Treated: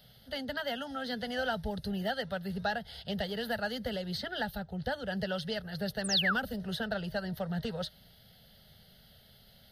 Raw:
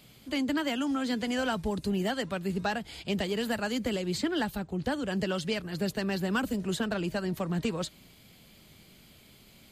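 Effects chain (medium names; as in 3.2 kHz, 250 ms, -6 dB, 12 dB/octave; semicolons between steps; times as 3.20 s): painted sound fall, 6.04–6.35 s, 1–10 kHz -26 dBFS; static phaser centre 1.6 kHz, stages 8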